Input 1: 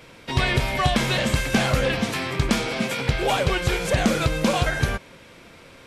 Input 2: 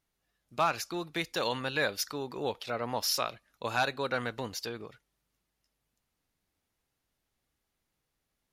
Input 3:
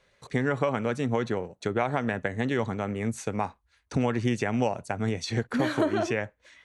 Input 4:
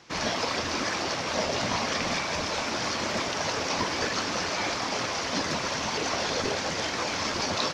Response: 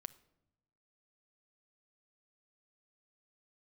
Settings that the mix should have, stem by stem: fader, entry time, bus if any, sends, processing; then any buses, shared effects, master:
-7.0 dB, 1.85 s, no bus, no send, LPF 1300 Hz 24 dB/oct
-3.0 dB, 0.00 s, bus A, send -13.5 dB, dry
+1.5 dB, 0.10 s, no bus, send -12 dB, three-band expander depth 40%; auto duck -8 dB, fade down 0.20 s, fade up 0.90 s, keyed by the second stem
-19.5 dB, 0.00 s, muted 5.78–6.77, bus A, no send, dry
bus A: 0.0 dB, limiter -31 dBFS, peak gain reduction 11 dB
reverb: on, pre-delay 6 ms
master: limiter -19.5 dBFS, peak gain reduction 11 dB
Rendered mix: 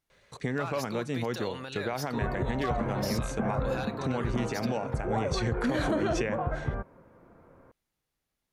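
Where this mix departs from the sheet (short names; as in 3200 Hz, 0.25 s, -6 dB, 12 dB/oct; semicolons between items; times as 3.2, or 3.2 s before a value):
stem 3: missing three-band expander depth 40%; stem 4: muted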